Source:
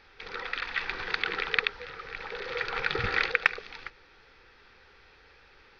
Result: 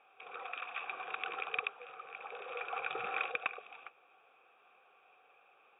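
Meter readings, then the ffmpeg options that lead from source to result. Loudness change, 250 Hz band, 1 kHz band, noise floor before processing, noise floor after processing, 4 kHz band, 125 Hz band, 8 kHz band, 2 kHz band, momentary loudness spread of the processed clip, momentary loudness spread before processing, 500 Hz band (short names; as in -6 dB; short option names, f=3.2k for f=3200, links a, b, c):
-9.5 dB, -15.0 dB, -5.0 dB, -58 dBFS, -67 dBFS, -14.0 dB, under -25 dB, n/a, -11.5 dB, 13 LU, 15 LU, -9.0 dB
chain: -filter_complex "[0:a]asplit=3[a][b][c];[a]bandpass=f=730:t=q:w=8,volume=0dB[d];[b]bandpass=f=1.09k:t=q:w=8,volume=-6dB[e];[c]bandpass=f=2.44k:t=q:w=8,volume=-9dB[f];[d][e][f]amix=inputs=3:normalize=0,asoftclip=type=hard:threshold=-29dB,afftfilt=real='re*between(b*sr/4096,110,3800)':imag='im*between(b*sr/4096,110,3800)':win_size=4096:overlap=0.75,volume=5.5dB"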